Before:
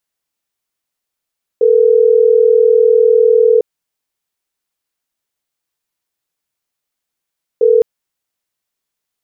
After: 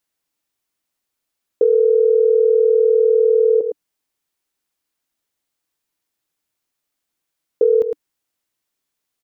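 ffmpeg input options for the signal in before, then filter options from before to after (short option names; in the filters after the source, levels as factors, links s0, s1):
-f lavfi -i "aevalsrc='0.355*(sin(2*PI*440*t)+sin(2*PI*480*t))*clip(min(mod(t,6),2-mod(t,6))/0.005,0,1)':d=6.21:s=44100"
-filter_complex "[0:a]equalizer=f=300:w=3.8:g=5.5,asplit=2[s0][s1];[s1]aecho=0:1:109:0.299[s2];[s0][s2]amix=inputs=2:normalize=0,acompressor=threshold=0.282:ratio=6"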